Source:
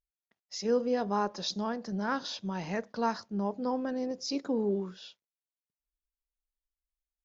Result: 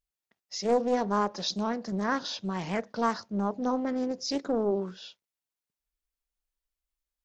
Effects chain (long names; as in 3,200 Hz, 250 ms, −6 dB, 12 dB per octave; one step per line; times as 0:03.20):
highs frequency-modulated by the lows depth 0.39 ms
level +3 dB